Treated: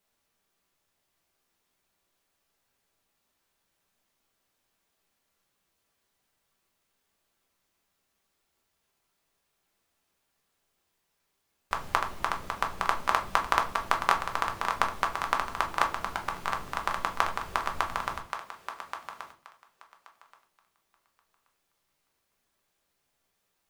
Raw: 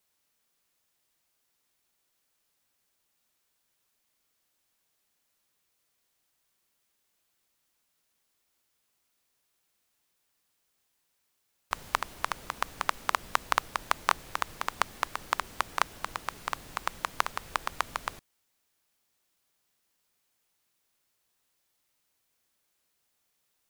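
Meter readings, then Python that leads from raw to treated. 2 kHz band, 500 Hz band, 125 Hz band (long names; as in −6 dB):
+2.0 dB, +5.0 dB, +5.0 dB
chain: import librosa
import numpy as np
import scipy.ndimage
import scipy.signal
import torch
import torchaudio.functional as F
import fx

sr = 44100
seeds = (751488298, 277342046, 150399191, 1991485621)

p1 = fx.high_shelf(x, sr, hz=3500.0, db=-7.0)
p2 = p1 + fx.echo_thinned(p1, sr, ms=1128, feedback_pct=16, hz=430.0, wet_db=-8.5, dry=0)
p3 = fx.room_shoebox(p2, sr, seeds[0], volume_m3=190.0, walls='furnished', distance_m=1.2)
y = p3 * 10.0 ** (1.5 / 20.0)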